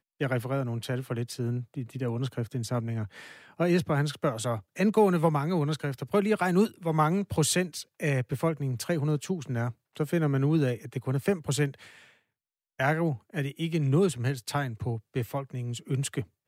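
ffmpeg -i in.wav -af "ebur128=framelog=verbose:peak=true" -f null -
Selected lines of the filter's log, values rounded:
Integrated loudness:
  I:         -28.9 LUFS
  Threshold: -39.1 LUFS
Loudness range:
  LRA:         4.5 LU
  Threshold: -48.8 LUFS
  LRA low:   -31.1 LUFS
  LRA high:  -26.5 LUFS
True peak:
  Peak:      -10.9 dBFS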